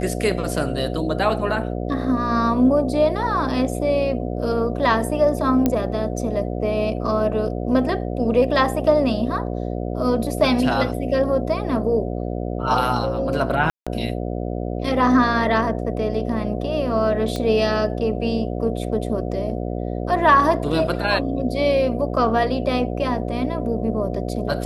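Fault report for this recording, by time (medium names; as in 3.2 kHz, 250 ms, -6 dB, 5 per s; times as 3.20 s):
buzz 60 Hz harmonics 12 -26 dBFS
5.66 s: pop -6 dBFS
13.70–13.87 s: dropout 166 ms
17.36 s: pop -13 dBFS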